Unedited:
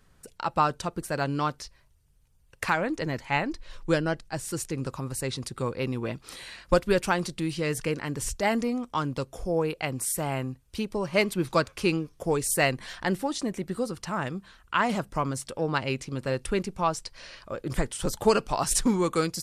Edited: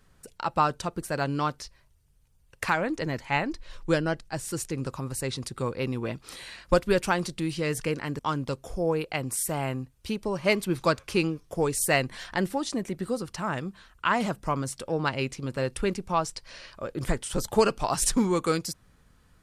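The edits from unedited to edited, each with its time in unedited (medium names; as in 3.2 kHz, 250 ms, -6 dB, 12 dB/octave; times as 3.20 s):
8.19–8.88 s: delete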